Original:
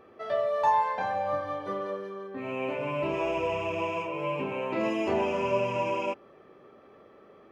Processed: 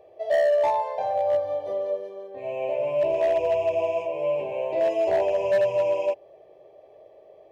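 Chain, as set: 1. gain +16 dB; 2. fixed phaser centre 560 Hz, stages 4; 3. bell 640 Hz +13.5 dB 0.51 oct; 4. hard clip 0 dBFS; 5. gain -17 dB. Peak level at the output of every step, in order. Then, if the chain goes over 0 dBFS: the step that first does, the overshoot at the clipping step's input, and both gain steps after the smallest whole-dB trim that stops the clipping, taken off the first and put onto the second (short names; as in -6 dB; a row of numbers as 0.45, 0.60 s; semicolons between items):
+1.5, -1.0, +8.5, 0.0, -17.0 dBFS; step 1, 8.5 dB; step 1 +7 dB, step 5 -8 dB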